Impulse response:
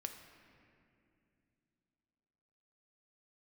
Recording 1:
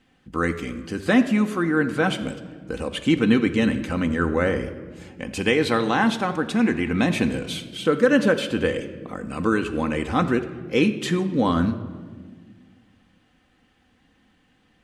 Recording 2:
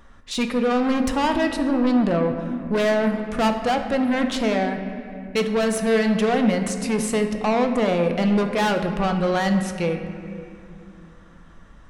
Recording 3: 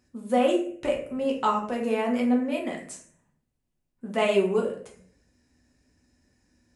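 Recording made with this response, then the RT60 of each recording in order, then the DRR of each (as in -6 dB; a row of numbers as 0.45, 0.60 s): 2; 1.7, 2.6, 0.55 s; 6.0, 5.0, -1.5 dB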